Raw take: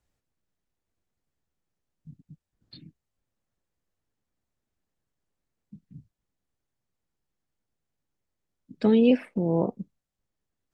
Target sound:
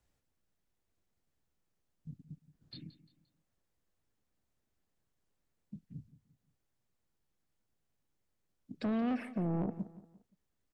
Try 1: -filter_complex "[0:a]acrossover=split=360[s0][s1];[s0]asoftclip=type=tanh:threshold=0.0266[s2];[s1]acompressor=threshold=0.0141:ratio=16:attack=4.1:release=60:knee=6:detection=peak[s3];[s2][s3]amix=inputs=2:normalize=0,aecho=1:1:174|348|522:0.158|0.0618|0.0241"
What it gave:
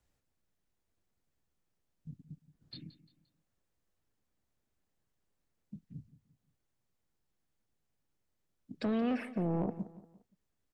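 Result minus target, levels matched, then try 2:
compression: peak gain reduction -6 dB
-filter_complex "[0:a]acrossover=split=360[s0][s1];[s0]asoftclip=type=tanh:threshold=0.0266[s2];[s1]acompressor=threshold=0.00668:ratio=16:attack=4.1:release=60:knee=6:detection=peak[s3];[s2][s3]amix=inputs=2:normalize=0,aecho=1:1:174|348|522:0.158|0.0618|0.0241"

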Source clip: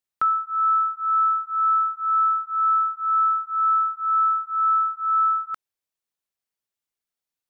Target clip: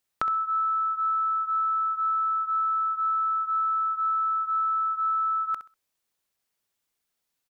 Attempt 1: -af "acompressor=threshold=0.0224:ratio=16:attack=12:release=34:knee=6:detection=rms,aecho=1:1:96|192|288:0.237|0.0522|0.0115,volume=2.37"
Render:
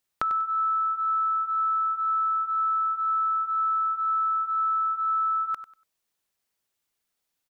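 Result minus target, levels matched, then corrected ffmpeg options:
echo 31 ms late
-af "acompressor=threshold=0.0224:ratio=16:attack=12:release=34:knee=6:detection=rms,aecho=1:1:65|130|195:0.237|0.0522|0.0115,volume=2.37"

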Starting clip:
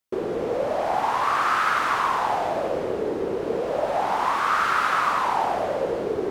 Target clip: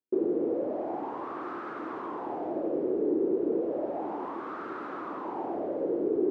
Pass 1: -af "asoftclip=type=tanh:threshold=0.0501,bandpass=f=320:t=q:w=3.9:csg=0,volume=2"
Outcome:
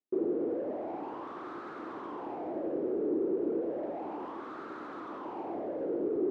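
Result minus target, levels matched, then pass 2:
saturation: distortion +11 dB
-af "asoftclip=type=tanh:threshold=0.168,bandpass=f=320:t=q:w=3.9:csg=0,volume=2"

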